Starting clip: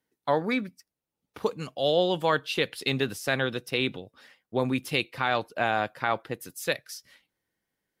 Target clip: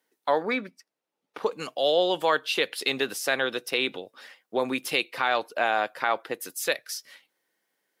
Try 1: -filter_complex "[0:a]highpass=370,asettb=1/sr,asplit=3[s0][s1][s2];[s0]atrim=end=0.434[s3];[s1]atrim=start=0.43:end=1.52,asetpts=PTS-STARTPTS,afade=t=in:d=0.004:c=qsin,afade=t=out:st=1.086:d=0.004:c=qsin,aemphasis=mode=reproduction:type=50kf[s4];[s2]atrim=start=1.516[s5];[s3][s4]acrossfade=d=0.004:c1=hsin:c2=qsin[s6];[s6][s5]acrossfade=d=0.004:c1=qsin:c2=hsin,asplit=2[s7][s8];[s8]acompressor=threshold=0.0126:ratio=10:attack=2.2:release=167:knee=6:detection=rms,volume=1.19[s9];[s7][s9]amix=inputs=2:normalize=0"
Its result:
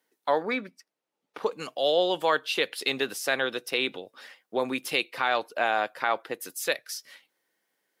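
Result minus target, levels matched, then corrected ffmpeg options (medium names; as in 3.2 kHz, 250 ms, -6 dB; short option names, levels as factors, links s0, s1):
compression: peak gain reduction +6 dB
-filter_complex "[0:a]highpass=370,asettb=1/sr,asplit=3[s0][s1][s2];[s0]atrim=end=0.434[s3];[s1]atrim=start=0.43:end=1.52,asetpts=PTS-STARTPTS,afade=t=in:d=0.004:c=qsin,afade=t=out:st=1.086:d=0.004:c=qsin,aemphasis=mode=reproduction:type=50kf[s4];[s2]atrim=start=1.516[s5];[s3][s4]acrossfade=d=0.004:c1=hsin:c2=qsin[s6];[s6][s5]acrossfade=d=0.004:c1=qsin:c2=hsin,asplit=2[s7][s8];[s8]acompressor=threshold=0.0266:ratio=10:attack=2.2:release=167:knee=6:detection=rms,volume=1.19[s9];[s7][s9]amix=inputs=2:normalize=0"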